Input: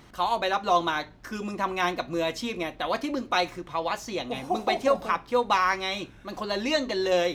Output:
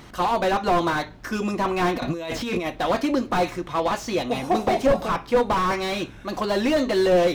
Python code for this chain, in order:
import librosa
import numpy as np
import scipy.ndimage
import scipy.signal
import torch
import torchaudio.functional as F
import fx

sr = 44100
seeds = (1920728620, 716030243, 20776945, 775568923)

y = fx.over_compress(x, sr, threshold_db=-36.0, ratio=-1.0, at=(1.95, 2.65), fade=0.02)
y = fx.slew_limit(y, sr, full_power_hz=44.0)
y = F.gain(torch.from_numpy(y), 7.5).numpy()